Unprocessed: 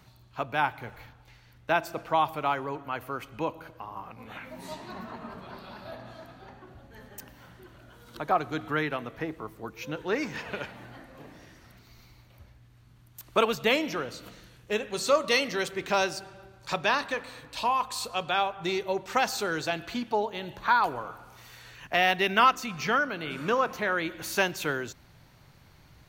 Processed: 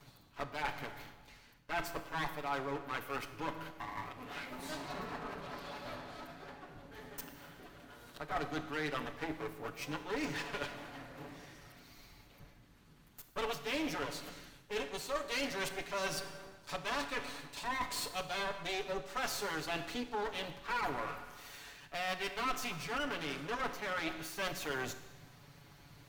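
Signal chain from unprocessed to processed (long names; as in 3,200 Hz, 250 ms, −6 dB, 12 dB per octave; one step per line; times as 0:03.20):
lower of the sound and its delayed copy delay 7 ms
reversed playback
downward compressor 5 to 1, threshold −35 dBFS, peak gain reduction 16 dB
reversed playback
mains-hum notches 60/120/180 Hz
four-comb reverb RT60 1.1 s, combs from 25 ms, DRR 10.5 dB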